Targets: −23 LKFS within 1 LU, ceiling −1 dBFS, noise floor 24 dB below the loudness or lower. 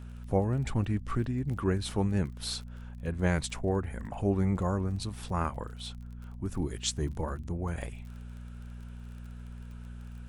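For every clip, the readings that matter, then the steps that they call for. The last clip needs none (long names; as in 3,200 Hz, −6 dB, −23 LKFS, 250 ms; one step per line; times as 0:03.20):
crackle rate 26 per second; mains hum 60 Hz; hum harmonics up to 240 Hz; level of the hum −40 dBFS; integrated loudness −32.5 LKFS; sample peak −13.0 dBFS; target loudness −23.0 LKFS
→ click removal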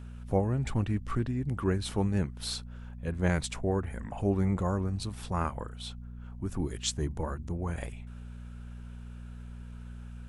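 crackle rate 0 per second; mains hum 60 Hz; hum harmonics up to 240 Hz; level of the hum −40 dBFS
→ hum removal 60 Hz, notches 4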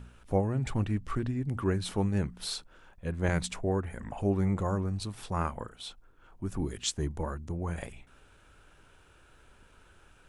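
mains hum none found; integrated loudness −32.5 LKFS; sample peak −14.5 dBFS; target loudness −23.0 LKFS
→ level +9.5 dB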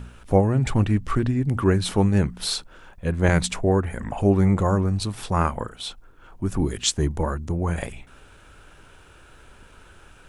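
integrated loudness −23.0 LKFS; sample peak −5.0 dBFS; background noise floor −50 dBFS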